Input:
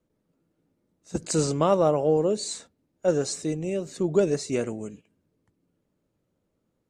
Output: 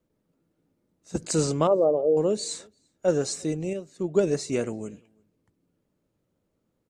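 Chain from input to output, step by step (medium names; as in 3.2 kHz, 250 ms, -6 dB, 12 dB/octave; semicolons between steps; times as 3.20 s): 1.67–2.17 s: resonances exaggerated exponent 2; echo from a far wall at 59 m, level -30 dB; 3.73–4.24 s: upward expansion 1.5:1, over -41 dBFS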